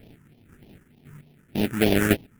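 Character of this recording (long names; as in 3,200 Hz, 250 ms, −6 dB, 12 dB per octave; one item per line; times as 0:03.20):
aliases and images of a low sample rate 1,100 Hz, jitter 20%
chopped level 0.95 Hz, depth 65%, duty 15%
phaser sweep stages 4, 3.3 Hz, lowest notch 660–1,400 Hz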